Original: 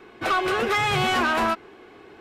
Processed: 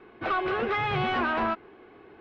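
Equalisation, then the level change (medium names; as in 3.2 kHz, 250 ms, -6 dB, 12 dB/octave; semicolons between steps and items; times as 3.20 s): low-pass 7.6 kHz 12 dB/octave; distance through air 310 m; -3.0 dB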